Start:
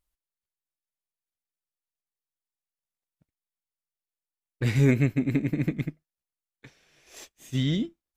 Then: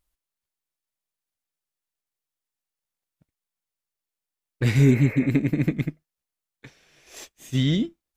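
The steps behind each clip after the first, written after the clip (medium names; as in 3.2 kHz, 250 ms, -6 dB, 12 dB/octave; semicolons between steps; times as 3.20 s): spectral replace 4.82–5.24 s, 410–2700 Hz; trim +4 dB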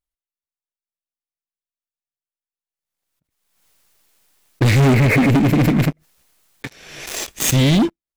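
waveshaping leveller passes 5; swell ahead of each attack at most 49 dB/s; trim -2.5 dB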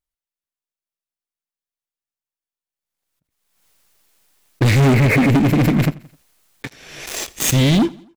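feedback delay 86 ms, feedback 52%, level -23 dB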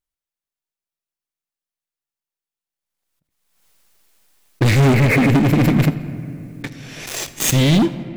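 reverberation RT60 2.9 s, pre-delay 5 ms, DRR 13 dB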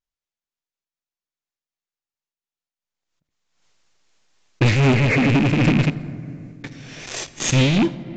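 rattle on loud lows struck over -16 dBFS, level -12 dBFS; resampled via 16 kHz; random flutter of the level, depth 60%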